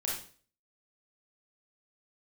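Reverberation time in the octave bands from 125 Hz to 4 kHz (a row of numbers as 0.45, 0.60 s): 0.50, 0.45, 0.45, 0.40, 0.40, 0.40 s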